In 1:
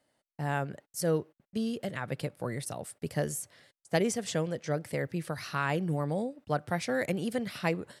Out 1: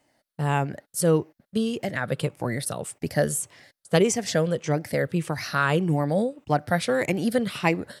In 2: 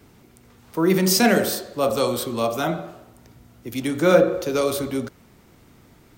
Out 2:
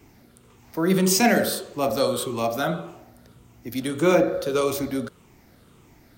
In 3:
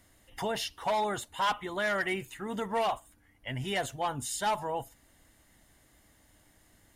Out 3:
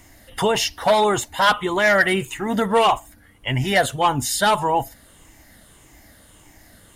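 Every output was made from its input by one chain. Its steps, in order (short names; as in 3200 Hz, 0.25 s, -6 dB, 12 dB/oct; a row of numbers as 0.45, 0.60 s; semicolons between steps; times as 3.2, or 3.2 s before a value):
moving spectral ripple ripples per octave 0.7, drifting -1.7 Hz, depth 7 dB; normalise peaks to -6 dBFS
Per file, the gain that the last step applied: +7.0, -2.0, +13.0 dB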